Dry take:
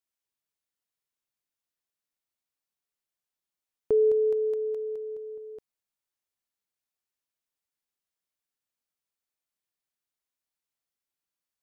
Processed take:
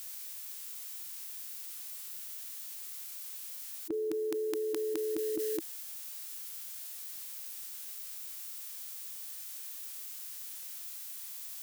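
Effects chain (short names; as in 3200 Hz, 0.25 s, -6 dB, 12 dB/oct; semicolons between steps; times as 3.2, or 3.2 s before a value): formant shift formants -5 st; tilt +4 dB/oct; fast leveller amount 100%; gain -7.5 dB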